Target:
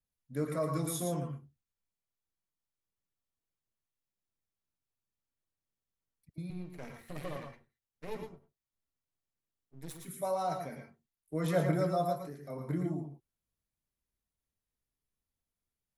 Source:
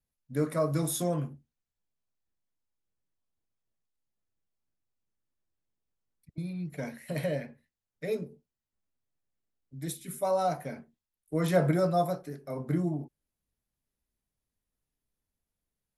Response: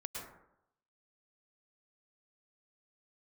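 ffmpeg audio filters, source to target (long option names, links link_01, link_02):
-filter_complex "[0:a]asettb=1/sr,asplit=3[link_01][link_02][link_03];[link_01]atrim=end=6.504[link_04];[link_02]atrim=start=6.5:end=10,asetpts=PTS-STARTPTS,afade=type=in:duration=0.004:curve=qsin,afade=type=out:start_time=3.496:duration=0.004:curve=qsin,aeval=exprs='max(val(0),0)':channel_layout=same[link_05];[link_03]atrim=start=9.996[link_06];[link_04][link_05]acrossfade=duration=0.004:curve1=hsin:curve2=qsin[link_07];[link_07][link_06]acrossfade=duration=0.004:curve1=qsin:curve2=hsin[link_08];[1:a]atrim=start_sample=2205,afade=type=out:start_time=0.16:duration=0.01,atrim=end_sample=7497,asetrate=41454,aresample=44100[link_09];[link_08][link_09]afir=irnorm=-1:irlink=0,volume=-1dB"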